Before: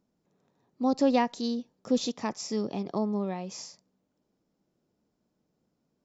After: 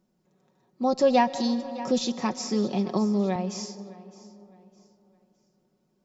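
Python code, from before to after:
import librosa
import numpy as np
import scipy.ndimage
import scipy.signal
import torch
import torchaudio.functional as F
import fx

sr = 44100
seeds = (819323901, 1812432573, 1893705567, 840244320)

y = x + 0.63 * np.pad(x, (int(5.4 * sr / 1000.0), 0))[:len(x)]
y = fx.echo_feedback(y, sr, ms=611, feedback_pct=32, wet_db=-19.5)
y = fx.rev_freeverb(y, sr, rt60_s=3.6, hf_ratio=0.3, predelay_ms=85, drr_db=16.0)
y = fx.band_squash(y, sr, depth_pct=40, at=(1.35, 3.36))
y = F.gain(torch.from_numpy(y), 2.5).numpy()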